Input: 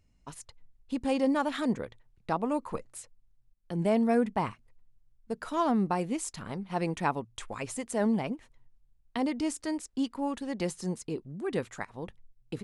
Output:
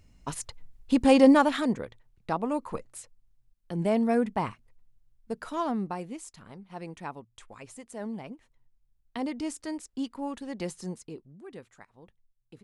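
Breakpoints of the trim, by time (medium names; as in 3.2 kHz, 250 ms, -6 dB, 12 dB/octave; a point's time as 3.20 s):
1.31 s +9.5 dB
1.74 s +0.5 dB
5.32 s +0.5 dB
6.37 s -9.5 dB
8.09 s -9.5 dB
9.23 s -2.5 dB
10.83 s -2.5 dB
11.60 s -14 dB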